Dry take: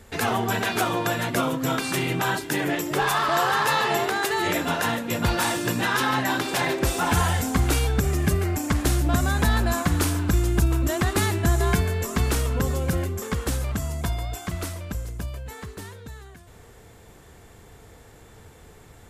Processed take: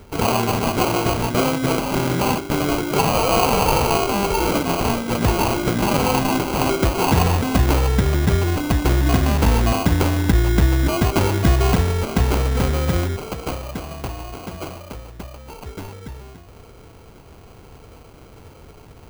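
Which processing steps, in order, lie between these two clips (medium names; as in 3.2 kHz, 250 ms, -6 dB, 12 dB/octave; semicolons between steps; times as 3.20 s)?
13.16–15.66 s: bass shelf 400 Hz -11.5 dB; sample-rate reducer 1.8 kHz, jitter 0%; trim +5 dB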